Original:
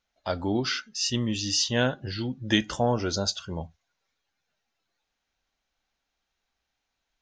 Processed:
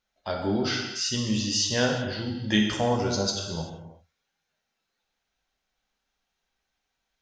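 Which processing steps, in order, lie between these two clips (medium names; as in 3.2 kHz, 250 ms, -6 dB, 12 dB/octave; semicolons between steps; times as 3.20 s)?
gated-style reverb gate 410 ms falling, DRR 0.5 dB; trim -2 dB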